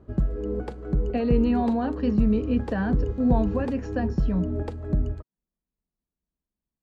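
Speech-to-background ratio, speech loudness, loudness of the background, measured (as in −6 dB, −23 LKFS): 3.0 dB, −26.5 LKFS, −29.5 LKFS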